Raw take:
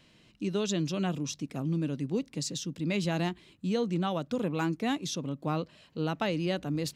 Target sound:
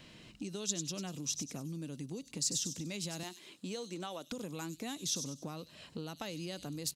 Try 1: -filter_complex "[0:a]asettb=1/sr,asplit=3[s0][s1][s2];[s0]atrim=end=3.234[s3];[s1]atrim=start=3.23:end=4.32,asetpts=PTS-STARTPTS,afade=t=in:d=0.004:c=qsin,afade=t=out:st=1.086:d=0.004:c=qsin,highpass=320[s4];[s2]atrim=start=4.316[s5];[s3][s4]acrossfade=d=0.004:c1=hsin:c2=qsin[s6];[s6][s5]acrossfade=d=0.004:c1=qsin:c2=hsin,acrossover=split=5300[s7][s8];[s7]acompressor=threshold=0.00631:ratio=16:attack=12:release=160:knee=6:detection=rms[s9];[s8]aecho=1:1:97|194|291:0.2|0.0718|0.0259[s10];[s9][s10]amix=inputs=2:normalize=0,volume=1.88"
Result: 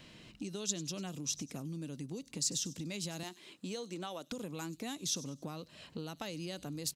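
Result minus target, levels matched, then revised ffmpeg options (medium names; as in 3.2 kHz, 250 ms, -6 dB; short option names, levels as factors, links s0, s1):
echo-to-direct -9 dB
-filter_complex "[0:a]asettb=1/sr,asplit=3[s0][s1][s2];[s0]atrim=end=3.234[s3];[s1]atrim=start=3.23:end=4.32,asetpts=PTS-STARTPTS,afade=t=in:d=0.004:c=qsin,afade=t=out:st=1.086:d=0.004:c=qsin,highpass=320[s4];[s2]atrim=start=4.316[s5];[s3][s4]acrossfade=d=0.004:c1=hsin:c2=qsin[s6];[s6][s5]acrossfade=d=0.004:c1=qsin:c2=hsin,acrossover=split=5300[s7][s8];[s7]acompressor=threshold=0.00631:ratio=16:attack=12:release=160:knee=6:detection=rms[s9];[s8]aecho=1:1:97|194|291|388:0.562|0.202|0.0729|0.0262[s10];[s9][s10]amix=inputs=2:normalize=0,volume=1.88"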